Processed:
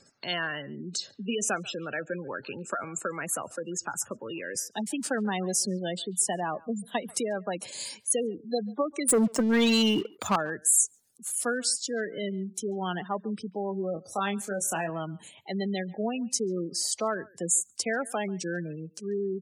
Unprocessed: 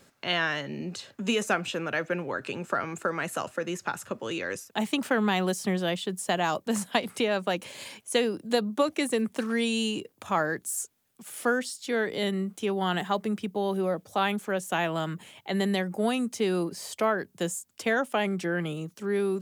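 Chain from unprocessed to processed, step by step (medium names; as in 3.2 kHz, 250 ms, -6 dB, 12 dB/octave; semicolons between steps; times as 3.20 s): spectral gate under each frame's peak -15 dB strong; high-order bell 7 kHz +15 dB; 9.08–10.36 s: waveshaping leveller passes 3; 13.93–14.90 s: doubling 25 ms -7 dB; speakerphone echo 140 ms, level -23 dB; trim -3.5 dB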